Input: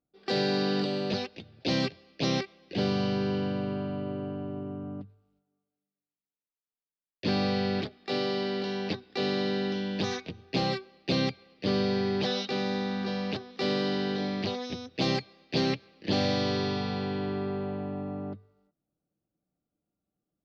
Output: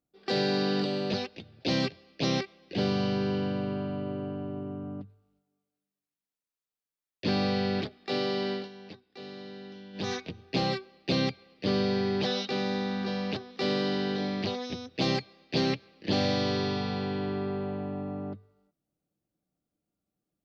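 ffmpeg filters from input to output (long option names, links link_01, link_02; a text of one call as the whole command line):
ffmpeg -i in.wav -filter_complex "[0:a]asplit=3[link_01][link_02][link_03];[link_01]atrim=end=8.69,asetpts=PTS-STARTPTS,afade=type=out:start_time=8.52:duration=0.17:silence=0.188365[link_04];[link_02]atrim=start=8.69:end=9.93,asetpts=PTS-STARTPTS,volume=-14.5dB[link_05];[link_03]atrim=start=9.93,asetpts=PTS-STARTPTS,afade=type=in:duration=0.17:silence=0.188365[link_06];[link_04][link_05][link_06]concat=n=3:v=0:a=1" out.wav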